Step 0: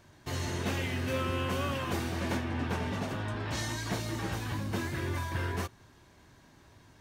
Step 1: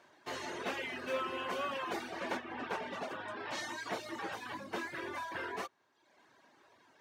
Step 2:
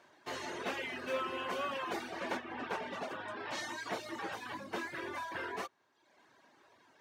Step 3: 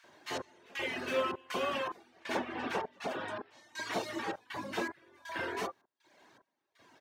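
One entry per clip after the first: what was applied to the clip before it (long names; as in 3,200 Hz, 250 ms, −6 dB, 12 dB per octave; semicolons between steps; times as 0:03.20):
high-pass filter 440 Hz 12 dB per octave; reverb reduction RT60 0.96 s; low-pass filter 2,600 Hz 6 dB per octave; level +1.5 dB
no processing that can be heard
gate pattern "xx..xxx." 80 BPM −24 dB; multiband delay without the direct sound highs, lows 40 ms, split 1,300 Hz; level +5 dB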